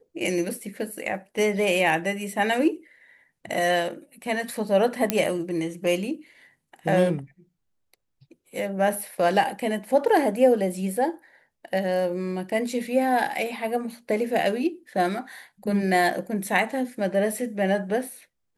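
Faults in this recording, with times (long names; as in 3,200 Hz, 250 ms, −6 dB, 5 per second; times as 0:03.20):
0:05.10: click −4 dBFS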